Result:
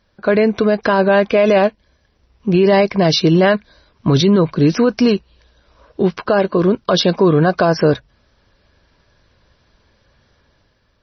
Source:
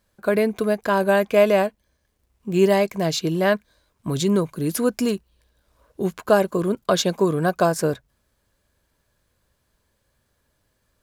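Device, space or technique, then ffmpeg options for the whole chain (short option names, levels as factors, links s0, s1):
low-bitrate web radio: -filter_complex "[0:a]asettb=1/sr,asplit=3[s0][s1][s2];[s0]atrim=end=4.764[s3];[s1]atrim=start=4.76:end=6.64,asetpts=PTS-STARTPTS,afade=t=in:d=0.004:c=qsin,afade=t=out:st=1.876:d=0.004:c=qsin,lowshelf=f=250:g=-2.5[s4];[s2]atrim=start=6.636[s5];[s3][s4]acrossfade=d=0.004:c1=hsin:c2=qsin[s6];[s6][s5]acrossfade=d=0.004:c1=qsin:c2=hsin,dynaudnorm=f=170:g=7:m=1.88,alimiter=limit=0.237:level=0:latency=1:release=46,volume=2.51" -ar 24000 -c:a libmp3lame -b:a 24k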